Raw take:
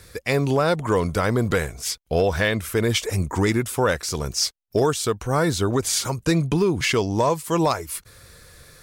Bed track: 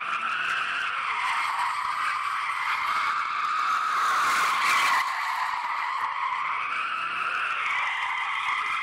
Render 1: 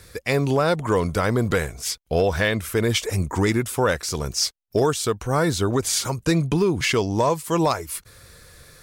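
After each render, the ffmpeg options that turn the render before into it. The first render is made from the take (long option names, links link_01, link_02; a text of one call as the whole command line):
ffmpeg -i in.wav -af anull out.wav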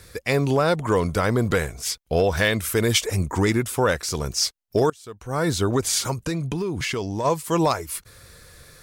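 ffmpeg -i in.wav -filter_complex "[0:a]asettb=1/sr,asplit=3[link_01][link_02][link_03];[link_01]atrim=end=2.374[link_04];[link_02]atrim=start=2.37:end=3.01,asetpts=PTS-STARTPTS,afade=type=in:duration=0.004:curve=qsin,afade=type=out:start_time=0.636:duration=0.004:curve=qsin,highshelf=frequency=4000:gain=6.5[link_05];[link_03]atrim=start=3.006[link_06];[link_04][link_05]acrossfade=duration=0.004:curve1=hsin:curve2=qsin[link_07];[link_07][link_06]acrossfade=duration=0.004:curve1=qsin:curve2=hsin,asplit=3[link_08][link_09][link_10];[link_08]afade=type=out:start_time=6.13:duration=0.02[link_11];[link_09]acompressor=threshold=-24dB:ratio=3:attack=3.2:release=140:knee=1:detection=peak,afade=type=in:start_time=6.13:duration=0.02,afade=type=out:start_time=7.24:duration=0.02[link_12];[link_10]afade=type=in:start_time=7.24:duration=0.02[link_13];[link_11][link_12][link_13]amix=inputs=3:normalize=0,asplit=2[link_14][link_15];[link_14]atrim=end=4.9,asetpts=PTS-STARTPTS,afade=type=out:start_time=4.896:duration=0.004:curve=hsin:silence=0.0749894[link_16];[link_15]atrim=start=4.9,asetpts=PTS-STARTPTS,afade=type=in:duration=0.61:curve=qua:silence=0.0749894[link_17];[link_16][link_17]concat=n=2:v=0:a=1" out.wav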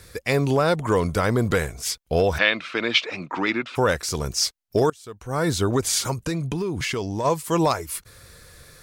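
ffmpeg -i in.wav -filter_complex "[0:a]asplit=3[link_01][link_02][link_03];[link_01]afade=type=out:start_time=2.37:duration=0.02[link_04];[link_02]highpass=frequency=200:width=0.5412,highpass=frequency=200:width=1.3066,equalizer=frequency=210:width_type=q:width=4:gain=-6,equalizer=frequency=420:width_type=q:width=4:gain=-9,equalizer=frequency=1300:width_type=q:width=4:gain=5,equalizer=frequency=2500:width_type=q:width=4:gain=8,equalizer=frequency=4000:width_type=q:width=4:gain=4,lowpass=frequency=4200:width=0.5412,lowpass=frequency=4200:width=1.3066,afade=type=in:start_time=2.37:duration=0.02,afade=type=out:start_time=3.75:duration=0.02[link_05];[link_03]afade=type=in:start_time=3.75:duration=0.02[link_06];[link_04][link_05][link_06]amix=inputs=3:normalize=0" out.wav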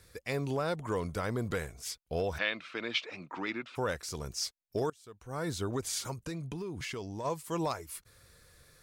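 ffmpeg -i in.wav -af "volume=-12.5dB" out.wav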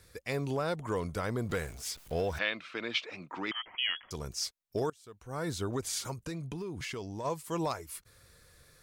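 ffmpeg -i in.wav -filter_complex "[0:a]asettb=1/sr,asplit=3[link_01][link_02][link_03];[link_01]atrim=end=1.494[link_04];[link_02]atrim=start=1.49:end=2.39,asetpts=PTS-STARTPTS,afade=type=in:duration=0.004:curve=qsin,afade=type=out:start_time=0.896:duration=0.004:curve=qsin,aeval=exprs='val(0)+0.5*0.00473*sgn(val(0))':channel_layout=same[link_05];[link_03]atrim=start=2.386[link_06];[link_04][link_05]acrossfade=duration=0.004:curve1=hsin:curve2=qsin[link_07];[link_07][link_06]acrossfade=duration=0.004:curve1=qsin:curve2=hsin,asettb=1/sr,asplit=3[link_08][link_09][link_10];[link_08]atrim=end=3.514[link_11];[link_09]atrim=start=3.51:end=4.11,asetpts=PTS-STARTPTS,afade=type=in:duration=0.004:curve=qsin,afade=type=out:start_time=0.596:duration=0.004:curve=qsin,lowpass=frequency=2900:width_type=q:width=0.5098,lowpass=frequency=2900:width_type=q:width=0.6013,lowpass=frequency=2900:width_type=q:width=0.9,lowpass=frequency=2900:width_type=q:width=2.563,afreqshift=-3400[link_12];[link_10]atrim=start=4.106[link_13];[link_11][link_12]acrossfade=duration=0.004:curve1=hsin:curve2=qsin[link_14];[link_14][link_13]acrossfade=duration=0.004:curve1=qsin:curve2=hsin" out.wav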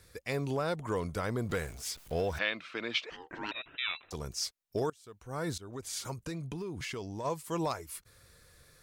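ffmpeg -i in.wav -filter_complex "[0:a]asettb=1/sr,asplit=3[link_01][link_02][link_03];[link_01]atrim=end=3.104[link_04];[link_02]atrim=start=3.1:end=4.13,asetpts=PTS-STARTPTS,afade=type=in:duration=0.004:curve=qsin,afade=type=out:start_time=1.026:duration=0.004:curve=qsin,aeval=exprs='val(0)*sin(2*PI*630*n/s)':channel_layout=same[link_05];[link_03]atrim=start=4.126[link_06];[link_04][link_05]acrossfade=duration=0.004:curve1=hsin:curve2=qsin[link_07];[link_07][link_06]acrossfade=duration=0.004:curve1=qsin:curve2=hsin,asplit=2[link_08][link_09];[link_08]atrim=end=5.58,asetpts=PTS-STARTPTS,afade=type=out:start_time=5.576:duration=0.004:curve=hsin:silence=0.11885[link_10];[link_09]atrim=start=5.58,asetpts=PTS-STARTPTS,afade=type=in:duration=0.57:silence=0.11885[link_11];[link_10][link_11]concat=n=2:v=0:a=1" out.wav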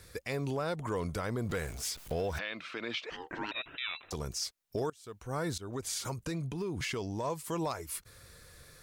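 ffmpeg -i in.wav -filter_complex "[0:a]asplit=2[link_01][link_02];[link_02]acompressor=threshold=-40dB:ratio=6,volume=-2dB[link_03];[link_01][link_03]amix=inputs=2:normalize=0,alimiter=level_in=1.5dB:limit=-24dB:level=0:latency=1:release=87,volume=-1.5dB" out.wav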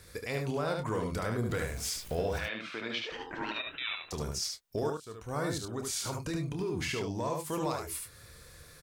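ffmpeg -i in.wav -filter_complex "[0:a]asplit=2[link_01][link_02];[link_02]adelay=27,volume=-9.5dB[link_03];[link_01][link_03]amix=inputs=2:normalize=0,aecho=1:1:73:0.631" out.wav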